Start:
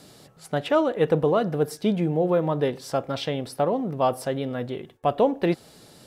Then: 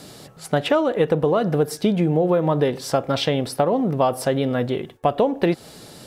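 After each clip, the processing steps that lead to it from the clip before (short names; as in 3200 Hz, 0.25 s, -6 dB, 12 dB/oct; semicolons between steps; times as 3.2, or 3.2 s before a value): compressor, threshold -23 dBFS, peak gain reduction 8.5 dB; gain +8 dB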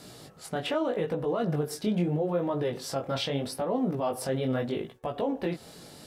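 limiter -15 dBFS, peak gain reduction 8.5 dB; chorus 0.79 Hz, delay 16 ms, depth 7.4 ms; gain -3 dB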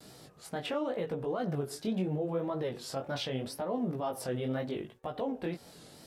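wow and flutter 110 cents; gain -5 dB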